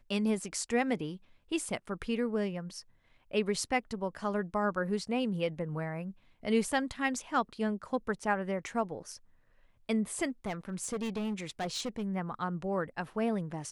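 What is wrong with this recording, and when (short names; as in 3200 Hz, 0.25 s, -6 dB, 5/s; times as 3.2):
10.28–12.04 clipped -30.5 dBFS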